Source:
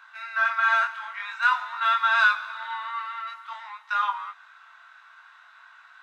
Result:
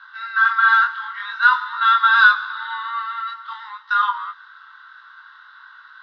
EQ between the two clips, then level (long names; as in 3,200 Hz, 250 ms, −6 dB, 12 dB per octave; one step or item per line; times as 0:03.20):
Chebyshev high-pass filter 830 Hz, order 8
low-pass filter 5,000 Hz 24 dB per octave
phaser with its sweep stopped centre 2,400 Hz, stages 6
+8.0 dB